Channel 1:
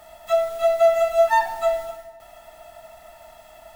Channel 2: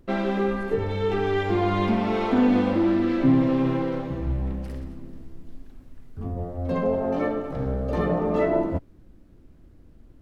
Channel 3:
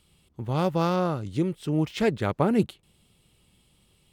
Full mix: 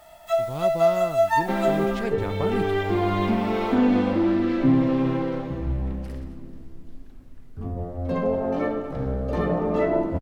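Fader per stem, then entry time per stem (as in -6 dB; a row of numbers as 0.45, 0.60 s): -3.0, 0.0, -7.0 dB; 0.00, 1.40, 0.00 s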